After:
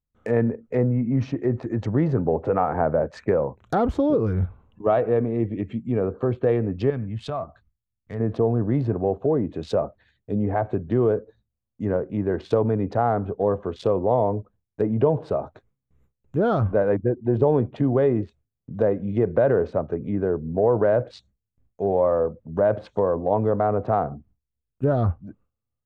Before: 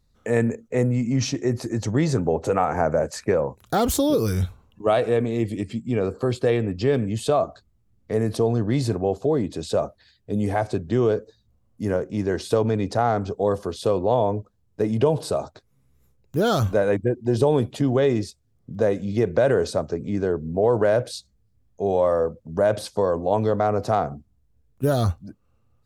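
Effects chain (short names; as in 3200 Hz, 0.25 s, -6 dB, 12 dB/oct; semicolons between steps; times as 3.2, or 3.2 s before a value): Wiener smoothing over 9 samples; gate with hold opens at -53 dBFS; treble ducked by the level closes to 1500 Hz, closed at -20 dBFS; 6.9–8.2 bell 420 Hz -13 dB 1.9 oct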